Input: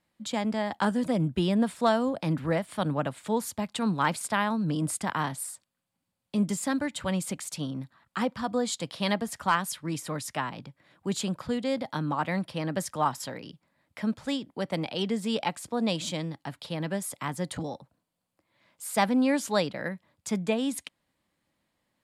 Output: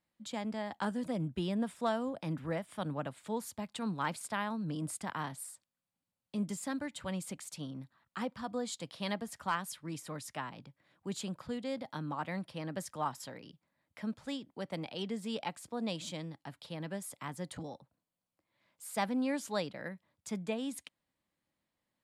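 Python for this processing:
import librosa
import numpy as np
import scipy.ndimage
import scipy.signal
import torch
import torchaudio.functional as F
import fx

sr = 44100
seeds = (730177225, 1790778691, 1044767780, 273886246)

y = fx.notch(x, sr, hz=4300.0, q=12.0, at=(1.54, 2.83))
y = y * librosa.db_to_amplitude(-9.0)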